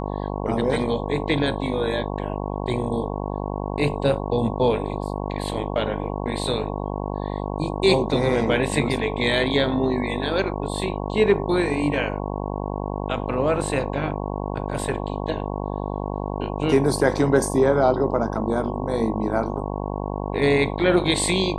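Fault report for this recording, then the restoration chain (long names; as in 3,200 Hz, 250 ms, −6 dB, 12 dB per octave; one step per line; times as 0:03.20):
mains buzz 50 Hz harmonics 22 −28 dBFS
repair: hum removal 50 Hz, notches 22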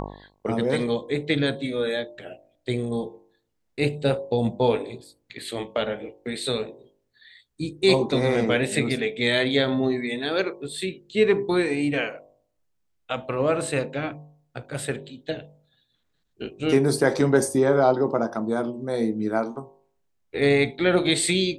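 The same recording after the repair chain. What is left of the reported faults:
none of them is left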